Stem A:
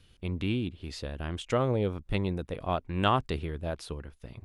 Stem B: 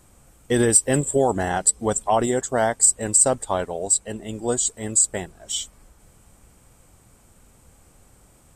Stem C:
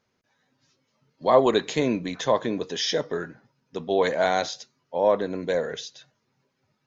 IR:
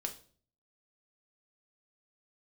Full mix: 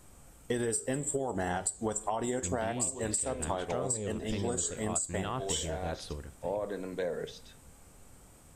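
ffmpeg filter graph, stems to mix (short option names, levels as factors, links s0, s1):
-filter_complex "[0:a]alimiter=limit=0.0891:level=0:latency=1,adelay=2200,volume=0.631,asplit=2[s0][s1];[s1]volume=0.266[s2];[1:a]acompressor=threshold=0.112:ratio=6,flanger=delay=9.6:depth=2.8:regen=87:speed=1.8:shape=sinusoidal,volume=0.944,asplit=3[s3][s4][s5];[s4]volume=0.501[s6];[2:a]highshelf=f=4300:g=-10,acompressor=threshold=0.0891:ratio=6,acrossover=split=710[s7][s8];[s7]aeval=exprs='val(0)*(1-0.5/2+0.5/2*cos(2*PI*1.4*n/s))':c=same[s9];[s8]aeval=exprs='val(0)*(1-0.5/2-0.5/2*cos(2*PI*1.4*n/s))':c=same[s10];[s9][s10]amix=inputs=2:normalize=0,adelay=1500,volume=0.596,asplit=2[s11][s12];[s12]volume=0.447[s13];[s5]apad=whole_len=368944[s14];[s11][s14]sidechaincompress=threshold=0.00178:ratio=8:attack=16:release=390[s15];[3:a]atrim=start_sample=2205[s16];[s2][s6][s13]amix=inputs=3:normalize=0[s17];[s17][s16]afir=irnorm=-1:irlink=0[s18];[s0][s3][s15][s18]amix=inputs=4:normalize=0,acompressor=threshold=0.0355:ratio=6"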